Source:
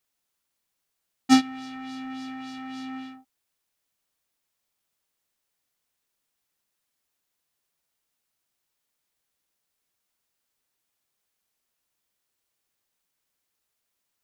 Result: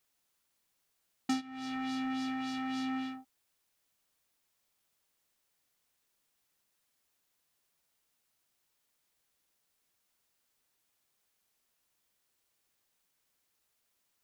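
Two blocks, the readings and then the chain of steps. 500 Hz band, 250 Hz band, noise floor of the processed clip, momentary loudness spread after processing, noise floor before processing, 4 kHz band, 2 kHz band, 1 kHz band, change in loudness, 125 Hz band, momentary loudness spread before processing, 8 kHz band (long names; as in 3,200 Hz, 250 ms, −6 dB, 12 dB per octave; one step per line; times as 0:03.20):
−8.0 dB, −8.5 dB, −79 dBFS, 7 LU, −80 dBFS, −9.0 dB, −6.0 dB, −7.5 dB, −9.0 dB, −7.0 dB, 18 LU, −12.0 dB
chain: downward compressor 10 to 1, threshold −33 dBFS, peak gain reduction 19.5 dB
level +1.5 dB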